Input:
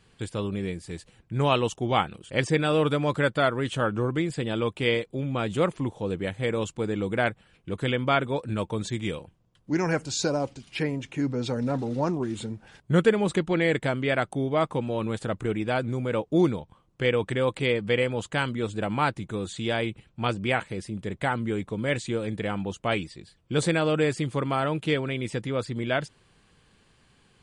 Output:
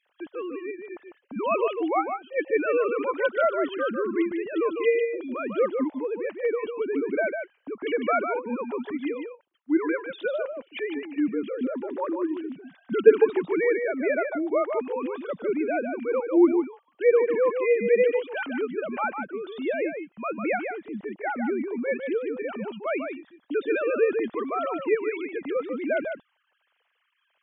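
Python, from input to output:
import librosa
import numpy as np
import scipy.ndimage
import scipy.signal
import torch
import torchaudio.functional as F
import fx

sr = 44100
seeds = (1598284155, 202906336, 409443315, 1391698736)

y = fx.sine_speech(x, sr)
y = y + 10.0 ** (-6.5 / 20.0) * np.pad(y, (int(150 * sr / 1000.0), 0))[:len(y)]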